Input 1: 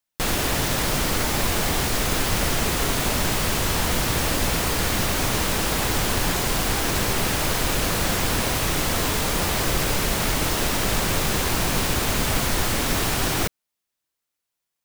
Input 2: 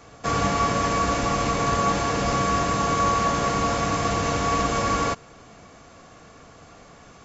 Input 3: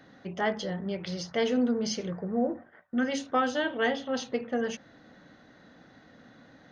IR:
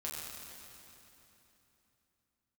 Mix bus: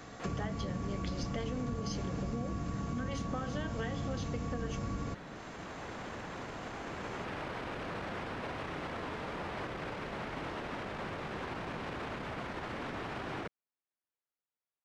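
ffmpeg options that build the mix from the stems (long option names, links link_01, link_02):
-filter_complex "[0:a]lowpass=2000,alimiter=limit=-19dB:level=0:latency=1:release=20,highpass=frequency=170:poles=1,volume=-10dB[link_01];[1:a]acrossover=split=290[link_02][link_03];[link_03]acompressor=threshold=-39dB:ratio=6[link_04];[link_02][link_04]amix=inputs=2:normalize=0,volume=-3.5dB[link_05];[2:a]acompressor=threshold=-39dB:ratio=2.5,volume=2dB,asplit=2[link_06][link_07];[link_07]apad=whole_len=654730[link_08];[link_01][link_08]sidechaincompress=threshold=-51dB:ratio=4:attack=11:release=1310[link_09];[link_09][link_05][link_06]amix=inputs=3:normalize=0,acompressor=threshold=-33dB:ratio=5"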